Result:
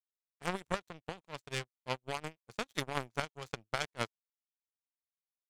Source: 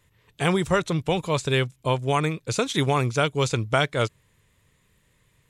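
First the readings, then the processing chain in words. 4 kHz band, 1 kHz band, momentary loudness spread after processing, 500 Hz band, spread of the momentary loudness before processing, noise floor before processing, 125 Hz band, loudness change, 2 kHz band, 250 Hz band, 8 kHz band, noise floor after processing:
-13.5 dB, -13.5 dB, 8 LU, -17.5 dB, 4 LU, -66 dBFS, -21.0 dB, -15.5 dB, -12.0 dB, -18.5 dB, -14.0 dB, under -85 dBFS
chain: tremolo 5.7 Hz, depth 29%; low-pass opened by the level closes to 2300 Hz, open at -24 dBFS; power-law curve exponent 3; gain -2.5 dB

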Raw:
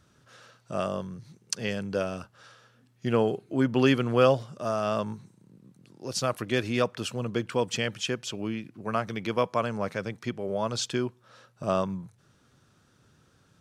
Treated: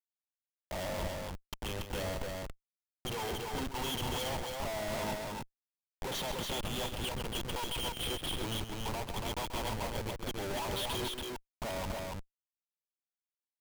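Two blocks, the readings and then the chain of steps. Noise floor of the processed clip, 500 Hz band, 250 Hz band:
under -85 dBFS, -11.5 dB, -12.5 dB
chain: recorder AGC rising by 6.6 dB/s; low-pass opened by the level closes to 1200 Hz, open at -19 dBFS; envelope flanger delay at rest 4.1 ms, full sweep at -24 dBFS; double band-pass 1700 Hz, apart 1.8 oct; Schmitt trigger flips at -50 dBFS; loudspeakers at several distances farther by 46 m -9 dB, 97 m -3 dB; gain +8 dB

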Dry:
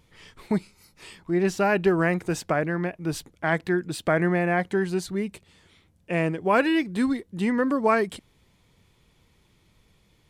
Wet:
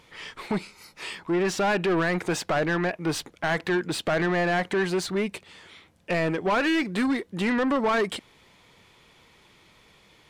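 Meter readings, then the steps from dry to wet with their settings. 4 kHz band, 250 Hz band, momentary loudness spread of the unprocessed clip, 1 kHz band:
+6.0 dB, -1.5 dB, 9 LU, -0.5 dB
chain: limiter -17 dBFS, peak gain reduction 7.5 dB; overdrive pedal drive 18 dB, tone 3400 Hz, clips at -17 dBFS

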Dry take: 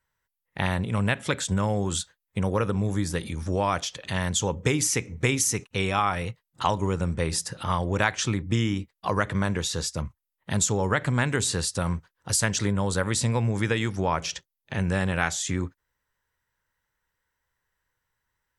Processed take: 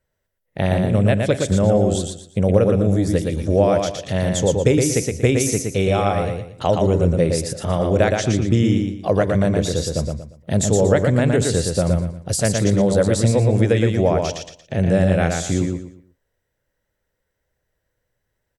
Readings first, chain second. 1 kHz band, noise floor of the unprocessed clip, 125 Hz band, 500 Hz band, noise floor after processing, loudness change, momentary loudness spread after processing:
+2.0 dB, -84 dBFS, +8.5 dB, +12.5 dB, -76 dBFS, +7.5 dB, 7 LU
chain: resonant low shelf 780 Hz +7 dB, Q 3; feedback echo 0.117 s, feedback 30%, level -4 dB

